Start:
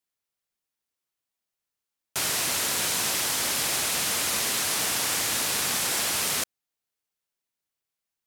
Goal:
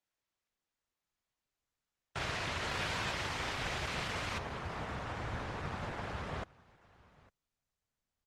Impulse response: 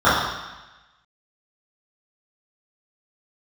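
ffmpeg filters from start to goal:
-af "alimiter=limit=-20.5dB:level=0:latency=1:release=26,aecho=1:1:854:0.0668,asubboost=boost=7.5:cutoff=100,asetnsamples=n=441:p=0,asendcmd='4.38 lowpass f 1300',lowpass=2.6k" -ar 48000 -c:a libopus -b:a 16k

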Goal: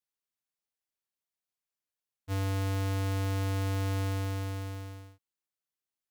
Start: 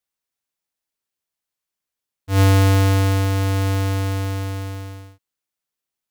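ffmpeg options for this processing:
-af "asoftclip=type=hard:threshold=-21dB,volume=-9dB"

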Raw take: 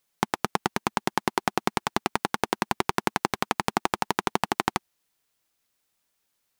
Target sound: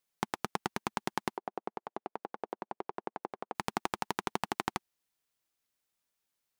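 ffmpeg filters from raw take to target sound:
-filter_complex "[0:a]asettb=1/sr,asplit=3[a][b][c];[a]atrim=end=1.374[d];[b]atrim=start=1.37:end=3.55,asetpts=PTS-STARTPTS,afade=t=in:d=0.004:c=qsin,afade=t=out:st=2.176:d=0.004:c=qsin,bandpass=f=550:t=q:w=1.5:csg=0[e];[c]atrim=start=3.546[f];[d][e]acrossfade=d=0.004:c1=hsin:c2=qsin[g];[g][f]acrossfade=d=0.004:c1=qsin:c2=hsin,volume=-8.5dB"

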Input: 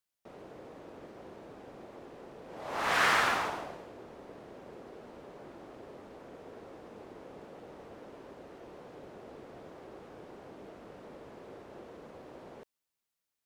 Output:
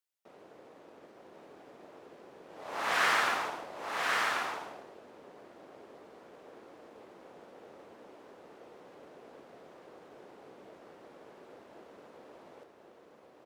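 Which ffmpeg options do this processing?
-filter_complex "[0:a]highpass=f=320:p=1,asplit=2[a][b];[b]aeval=exprs='sgn(val(0))*max(abs(val(0))-0.00531,0)':c=same,volume=-7dB[c];[a][c]amix=inputs=2:normalize=0,aecho=1:1:1086:0.708,volume=-4dB"

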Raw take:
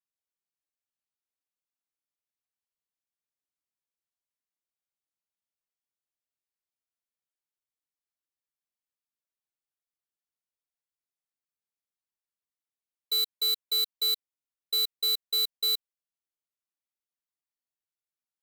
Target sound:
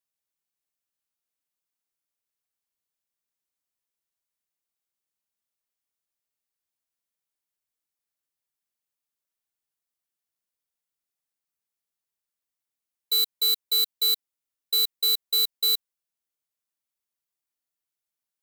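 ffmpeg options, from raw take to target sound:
-af "highshelf=f=7.1k:g=5.5,volume=2dB"

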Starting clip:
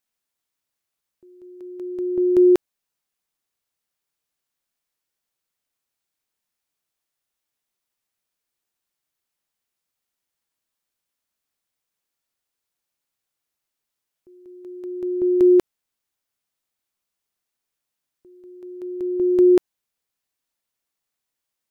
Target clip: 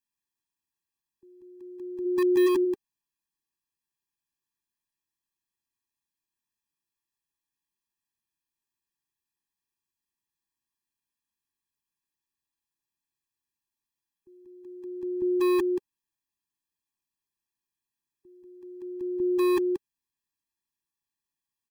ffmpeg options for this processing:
-filter_complex "[0:a]asplit=3[a][b][c];[a]afade=t=out:st=2.04:d=0.02[d];[b]bass=f=250:g=13,treble=f=4k:g=-6,afade=t=in:st=2.04:d=0.02,afade=t=out:st=2.46:d=0.02[e];[c]afade=t=in:st=2.46:d=0.02[f];[d][e][f]amix=inputs=3:normalize=0,aecho=1:1:179:0.376,acrossover=split=270|430[g][h][i];[g]aeval=exprs='(mod(18.8*val(0)+1,2)-1)/18.8':c=same[j];[j][h][i]amix=inputs=3:normalize=0,afftfilt=real='re*eq(mod(floor(b*sr/1024/390),2),0)':imag='im*eq(mod(floor(b*sr/1024/390),2),0)':win_size=1024:overlap=0.75,volume=-5dB"

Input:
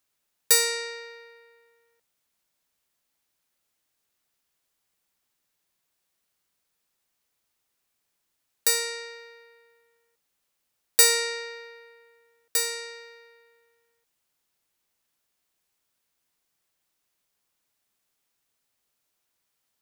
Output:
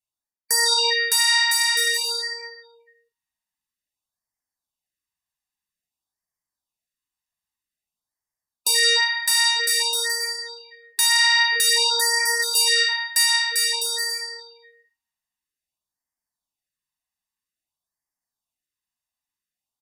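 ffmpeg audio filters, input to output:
-af "afftdn=nr=32:nf=-42,aecho=1:1:1.1:0.63,areverse,acompressor=threshold=-27dB:ratio=20,areverse,flanger=delay=1.7:depth=2.9:regen=-33:speed=0.95:shape=sinusoidal,aecho=1:1:610|1006|1264|1432|1541:0.631|0.398|0.251|0.158|0.1,aresample=32000,aresample=44100,alimiter=level_in=30dB:limit=-1dB:release=50:level=0:latency=1,afftfilt=real='re*(1-between(b*sr/1024,410*pow(3300/410,0.5+0.5*sin(2*PI*0.51*pts/sr))/1.41,410*pow(3300/410,0.5+0.5*sin(2*PI*0.51*pts/sr))*1.41))':imag='im*(1-between(b*sr/1024,410*pow(3300/410,0.5+0.5*sin(2*PI*0.51*pts/sr))/1.41,410*pow(3300/410,0.5+0.5*sin(2*PI*0.51*pts/sr))*1.41))':win_size=1024:overlap=0.75,volume=-8dB"

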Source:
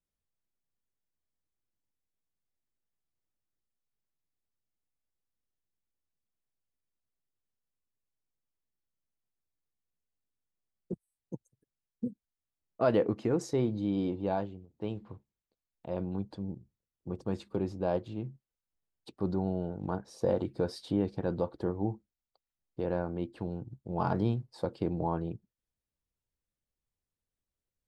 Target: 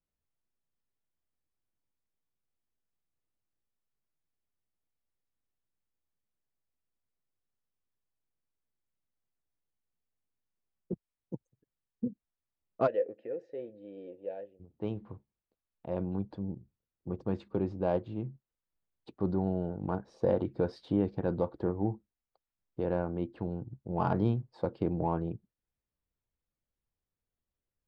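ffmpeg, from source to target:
-filter_complex "[0:a]adynamicsmooth=sensitivity=2:basefreq=2.9k,asplit=3[a][b][c];[a]afade=t=out:st=12.86:d=0.02[d];[b]asplit=3[e][f][g];[e]bandpass=f=530:t=q:w=8,volume=0dB[h];[f]bandpass=f=1.84k:t=q:w=8,volume=-6dB[i];[g]bandpass=f=2.48k:t=q:w=8,volume=-9dB[j];[h][i][j]amix=inputs=3:normalize=0,afade=t=in:st=12.86:d=0.02,afade=t=out:st=14.59:d=0.02[k];[c]afade=t=in:st=14.59:d=0.02[l];[d][k][l]amix=inputs=3:normalize=0,volume=1dB"

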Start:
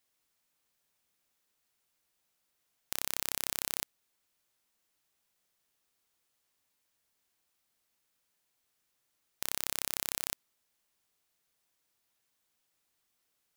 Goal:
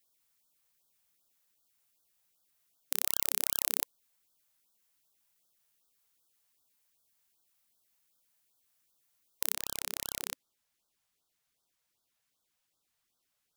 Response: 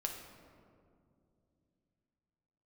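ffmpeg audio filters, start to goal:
-af "asetnsamples=n=441:p=0,asendcmd='9.54 highshelf g -2',highshelf=f=8.3k:g=7.5,afftfilt=real='re*(1-between(b*sr/1024,280*pow(2300/280,0.5+0.5*sin(2*PI*2.6*pts/sr))/1.41,280*pow(2300/280,0.5+0.5*sin(2*PI*2.6*pts/sr))*1.41))':imag='im*(1-between(b*sr/1024,280*pow(2300/280,0.5+0.5*sin(2*PI*2.6*pts/sr))/1.41,280*pow(2300/280,0.5+0.5*sin(2*PI*2.6*pts/sr))*1.41))':win_size=1024:overlap=0.75,volume=-1dB"

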